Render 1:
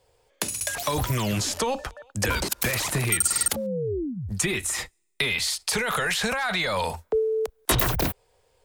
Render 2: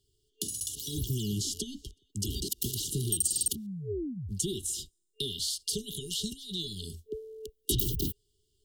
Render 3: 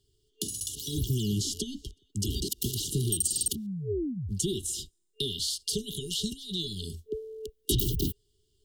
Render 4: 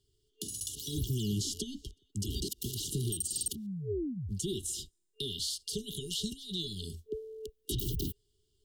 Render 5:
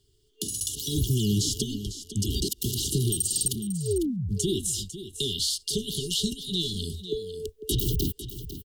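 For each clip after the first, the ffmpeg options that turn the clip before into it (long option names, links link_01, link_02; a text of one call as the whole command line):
ffmpeg -i in.wav -af "afftfilt=real='re*(1-between(b*sr/4096,440,2800))':imag='im*(1-between(b*sr/4096,440,2800))':win_size=4096:overlap=0.75,volume=-5.5dB" out.wav
ffmpeg -i in.wav -af "highshelf=frequency=5500:gain=-4.5,volume=3.5dB" out.wav
ffmpeg -i in.wav -af "alimiter=limit=-20dB:level=0:latency=1:release=123,volume=-3.5dB" out.wav
ffmpeg -i in.wav -af "aecho=1:1:500:0.251,volume=8dB" out.wav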